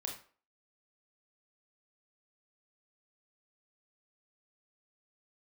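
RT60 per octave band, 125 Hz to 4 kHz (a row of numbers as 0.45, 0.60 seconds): 0.30, 0.40, 0.45, 0.40, 0.35, 0.30 seconds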